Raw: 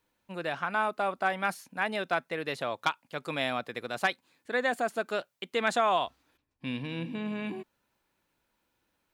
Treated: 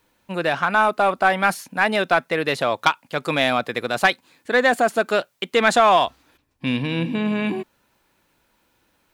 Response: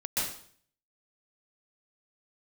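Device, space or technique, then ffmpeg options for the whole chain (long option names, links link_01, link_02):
parallel distortion: -filter_complex "[0:a]asplit=2[link_01][link_02];[link_02]asoftclip=type=hard:threshold=-25.5dB,volume=-6dB[link_03];[link_01][link_03]amix=inputs=2:normalize=0,volume=8.5dB"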